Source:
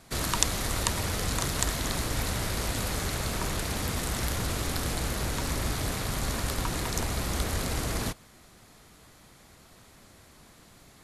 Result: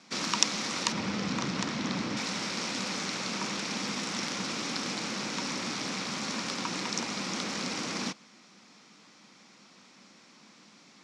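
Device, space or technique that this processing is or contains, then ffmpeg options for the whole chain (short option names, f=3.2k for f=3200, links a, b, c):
television speaker: -filter_complex "[0:a]asettb=1/sr,asplit=3[a][b][c];[a]atrim=end=0.924[d];[b]atrim=start=0.92:end=2.17,asetpts=PTS-STARTPTS,afade=t=in:d=0.004:c=qsin,afade=t=out:st=1.246:d=0.004:c=qsin,aemphasis=mode=reproduction:type=bsi[e];[c]atrim=start=2.166[f];[d][e]acrossfade=d=0.004:c1=hsin:c2=qsin[g];[g][f]acrossfade=d=0.004:c1=qsin:c2=hsin,highpass=f=200:w=0.5412,highpass=f=200:w=1.3066,equalizer=f=200:t=q:w=4:g=6,equalizer=f=410:t=q:w=4:g=-6,equalizer=f=660:t=q:w=4:g=-7,equalizer=f=1.7k:t=q:w=4:g=-3,equalizer=f=2.4k:t=q:w=4:g=4,equalizer=f=5.5k:t=q:w=4:g=7,lowpass=f=6.5k:w=0.5412,lowpass=f=6.5k:w=1.3066"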